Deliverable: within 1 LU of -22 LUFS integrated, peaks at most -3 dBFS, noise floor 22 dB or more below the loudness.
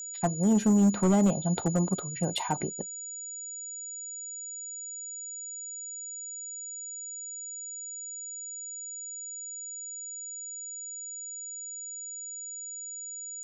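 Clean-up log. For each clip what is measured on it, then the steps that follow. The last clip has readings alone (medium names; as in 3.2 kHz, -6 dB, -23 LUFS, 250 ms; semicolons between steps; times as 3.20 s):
clipped samples 0.4%; clipping level -17.5 dBFS; steady tone 6.9 kHz; tone level -37 dBFS; loudness -32.0 LUFS; peak level -17.5 dBFS; loudness target -22.0 LUFS
-> clip repair -17.5 dBFS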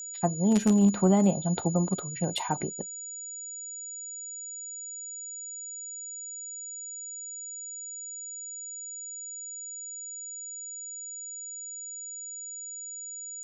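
clipped samples 0.0%; steady tone 6.9 kHz; tone level -37 dBFS
-> band-stop 6.9 kHz, Q 30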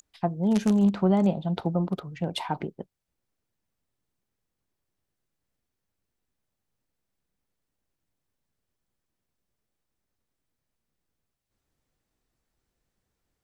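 steady tone not found; loudness -26.0 LUFS; peak level -9.0 dBFS; loudness target -22.0 LUFS
-> trim +4 dB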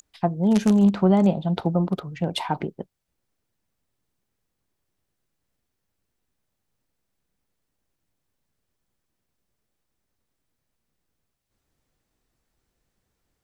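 loudness -22.0 LUFS; peak level -5.0 dBFS; noise floor -79 dBFS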